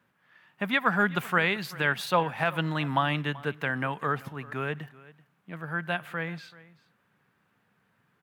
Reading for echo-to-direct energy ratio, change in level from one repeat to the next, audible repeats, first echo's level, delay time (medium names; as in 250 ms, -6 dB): -20.5 dB, no regular repeats, 1, -20.5 dB, 383 ms